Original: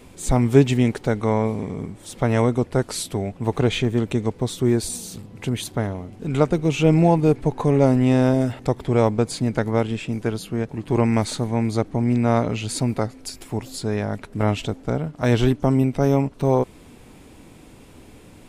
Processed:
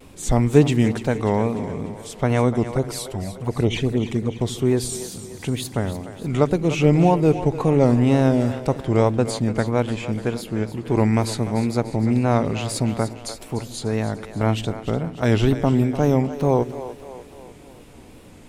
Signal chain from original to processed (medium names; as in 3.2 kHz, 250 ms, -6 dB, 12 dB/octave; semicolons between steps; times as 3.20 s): 2.64–4.41 s: touch-sensitive flanger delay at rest 5.2 ms, full sweep at -15.5 dBFS; wow and flutter 110 cents; two-band feedback delay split 350 Hz, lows 81 ms, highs 296 ms, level -12 dB